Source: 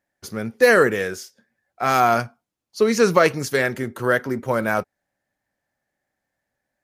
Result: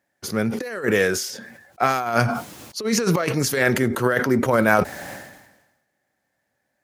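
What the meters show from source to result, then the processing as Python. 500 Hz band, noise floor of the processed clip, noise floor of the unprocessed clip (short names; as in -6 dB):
-3.0 dB, -75 dBFS, -82 dBFS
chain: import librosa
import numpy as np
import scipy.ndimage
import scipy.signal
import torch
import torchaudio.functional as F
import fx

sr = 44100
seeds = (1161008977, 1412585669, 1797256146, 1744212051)

y = fx.over_compress(x, sr, threshold_db=-21.0, ratio=-0.5)
y = scipy.signal.sosfilt(scipy.signal.butter(2, 82.0, 'highpass', fs=sr, output='sos'), y)
y = fx.sustainer(y, sr, db_per_s=54.0)
y = F.gain(torch.from_numpy(y), 1.5).numpy()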